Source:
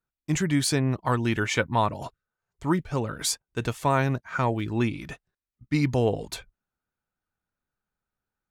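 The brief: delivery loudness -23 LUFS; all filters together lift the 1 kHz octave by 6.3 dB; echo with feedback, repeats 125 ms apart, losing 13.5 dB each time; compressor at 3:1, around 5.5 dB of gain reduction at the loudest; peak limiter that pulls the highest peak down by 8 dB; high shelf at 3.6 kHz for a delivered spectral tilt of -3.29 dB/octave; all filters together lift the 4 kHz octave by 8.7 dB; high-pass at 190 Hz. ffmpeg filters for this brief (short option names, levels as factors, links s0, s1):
-af "highpass=190,equalizer=f=1000:t=o:g=6.5,highshelf=f=3600:g=7,equalizer=f=4000:t=o:g=5.5,acompressor=threshold=0.0891:ratio=3,alimiter=limit=0.188:level=0:latency=1,aecho=1:1:125|250:0.211|0.0444,volume=1.88"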